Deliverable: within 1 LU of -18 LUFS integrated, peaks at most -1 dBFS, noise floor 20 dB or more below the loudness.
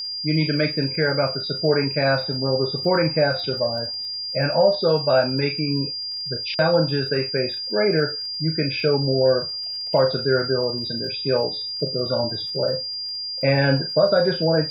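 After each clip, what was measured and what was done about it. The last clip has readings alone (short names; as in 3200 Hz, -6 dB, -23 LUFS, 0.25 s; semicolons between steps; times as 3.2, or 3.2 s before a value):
ticks 52/s; steady tone 4800 Hz; tone level -27 dBFS; loudness -21.5 LUFS; peak -5.5 dBFS; loudness target -18.0 LUFS
-> de-click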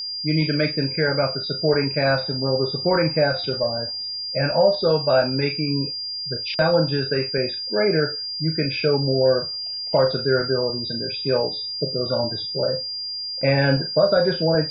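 ticks 0.27/s; steady tone 4800 Hz; tone level -27 dBFS
-> notch 4800 Hz, Q 30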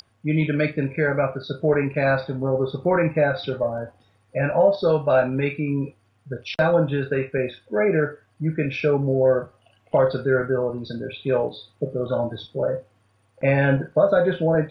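steady tone none; loudness -22.5 LUFS; peak -6.0 dBFS; loudness target -18.0 LUFS
-> gain +4.5 dB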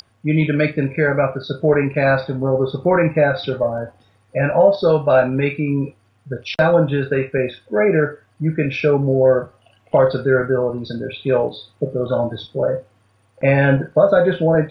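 loudness -18.0 LUFS; peak -1.5 dBFS; noise floor -59 dBFS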